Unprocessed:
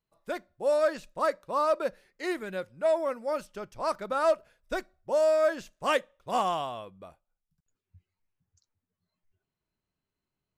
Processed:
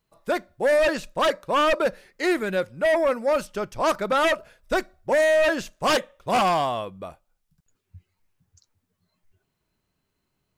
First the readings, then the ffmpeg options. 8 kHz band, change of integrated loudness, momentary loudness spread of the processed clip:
+9.5 dB, +6.0 dB, 8 LU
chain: -af "aeval=exprs='0.158*sin(PI/2*2.24*val(0)/0.158)':channel_layout=same"

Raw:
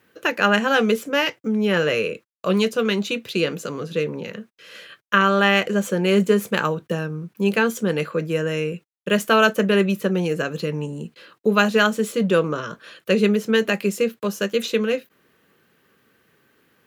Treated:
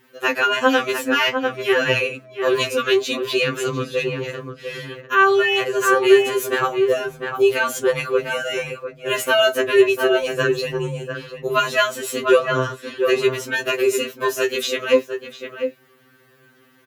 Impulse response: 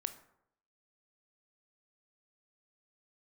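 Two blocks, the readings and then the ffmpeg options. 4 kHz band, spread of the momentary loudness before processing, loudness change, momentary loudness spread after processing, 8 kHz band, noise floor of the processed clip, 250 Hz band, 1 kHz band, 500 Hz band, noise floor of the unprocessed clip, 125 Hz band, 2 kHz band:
+3.0 dB, 12 LU, +1.5 dB, 12 LU, +5.0 dB, −55 dBFS, −4.5 dB, +2.5 dB, +3.5 dB, −68 dBFS, −5.0 dB, +2.5 dB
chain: -filter_complex "[0:a]asplit=2[link_01][link_02];[link_02]adelay=699.7,volume=-8dB,highshelf=frequency=4000:gain=-15.7[link_03];[link_01][link_03]amix=inputs=2:normalize=0,alimiter=level_in=10dB:limit=-1dB:release=50:level=0:latency=1,afftfilt=real='re*2.45*eq(mod(b,6),0)':imag='im*2.45*eq(mod(b,6),0)':win_size=2048:overlap=0.75,volume=-2.5dB"

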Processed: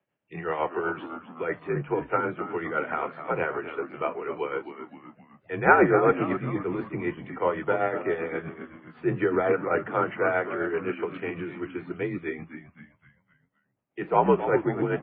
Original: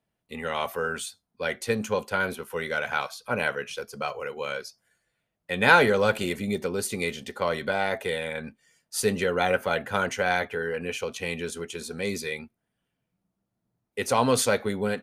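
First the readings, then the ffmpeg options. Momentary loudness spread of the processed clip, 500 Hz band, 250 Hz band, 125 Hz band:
15 LU, +1.0 dB, +2.5 dB, +1.0 dB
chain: -filter_complex "[0:a]acrossover=split=200|510|1900[link_01][link_02][link_03][link_04];[link_04]acompressor=threshold=-49dB:ratio=12[link_05];[link_01][link_02][link_03][link_05]amix=inputs=4:normalize=0,tremolo=f=7.9:d=0.57,asplit=6[link_06][link_07][link_08][link_09][link_10][link_11];[link_07]adelay=259,afreqshift=-85,volume=-10.5dB[link_12];[link_08]adelay=518,afreqshift=-170,volume=-16.5dB[link_13];[link_09]adelay=777,afreqshift=-255,volume=-22.5dB[link_14];[link_10]adelay=1036,afreqshift=-340,volume=-28.6dB[link_15];[link_11]adelay=1295,afreqshift=-425,volume=-34.6dB[link_16];[link_06][link_12][link_13][link_14][link_15][link_16]amix=inputs=6:normalize=0,highpass=frequency=220:width_type=q:width=0.5412,highpass=frequency=220:width_type=q:width=1.307,lowpass=frequency=3000:width_type=q:width=0.5176,lowpass=frequency=3000:width_type=q:width=0.7071,lowpass=frequency=3000:width_type=q:width=1.932,afreqshift=-70,volume=4.5dB" -ar 12000 -c:a libmp3lame -b:a 16k

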